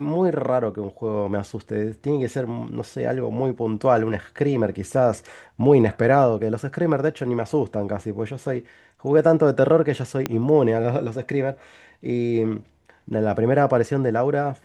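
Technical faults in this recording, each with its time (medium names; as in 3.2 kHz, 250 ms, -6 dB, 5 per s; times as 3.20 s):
10.26 s: pop -9 dBFS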